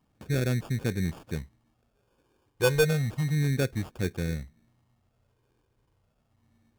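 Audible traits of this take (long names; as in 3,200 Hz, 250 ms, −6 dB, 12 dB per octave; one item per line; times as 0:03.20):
phaser sweep stages 12, 0.31 Hz, lowest notch 210–1,300 Hz
aliases and images of a low sample rate 2,000 Hz, jitter 0%
AAC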